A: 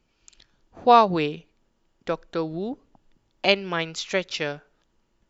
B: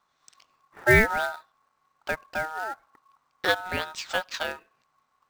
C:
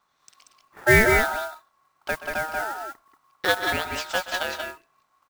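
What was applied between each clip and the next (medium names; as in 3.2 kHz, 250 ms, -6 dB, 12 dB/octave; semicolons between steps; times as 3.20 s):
low-pass that closes with the level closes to 2.2 kHz, closed at -20 dBFS; short-mantissa float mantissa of 2-bit; ring modulator 1.1 kHz
modulation noise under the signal 16 dB; on a send: multi-tap echo 126/183/186 ms -14.5/-8.5/-6 dB; on the sum: trim +1.5 dB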